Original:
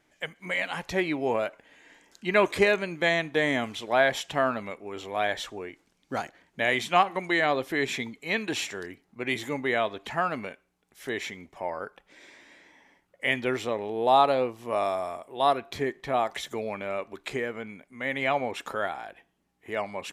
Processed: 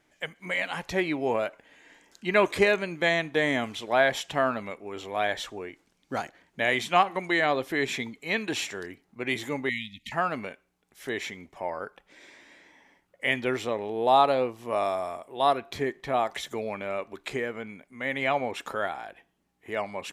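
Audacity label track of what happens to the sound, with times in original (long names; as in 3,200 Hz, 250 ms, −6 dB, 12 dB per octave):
9.690000	10.120000	linear-phase brick-wall band-stop 270–1,800 Hz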